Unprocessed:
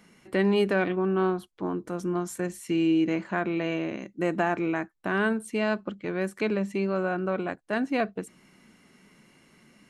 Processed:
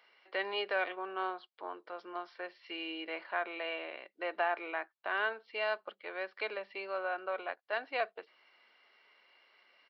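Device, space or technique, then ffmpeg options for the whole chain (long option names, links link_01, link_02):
musical greeting card: -af "aresample=11025,aresample=44100,highpass=frequency=540:width=0.5412,highpass=frequency=540:width=1.3066,equalizer=frequency=2700:width_type=o:width=0.37:gain=5,bandreject=frequency=2600:width=12,volume=-4.5dB"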